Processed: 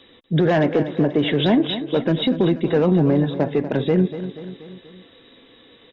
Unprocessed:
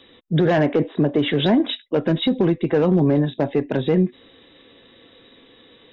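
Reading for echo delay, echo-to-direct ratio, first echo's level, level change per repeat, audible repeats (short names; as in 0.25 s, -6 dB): 0.241 s, -10.5 dB, -12.0 dB, -5.0 dB, 4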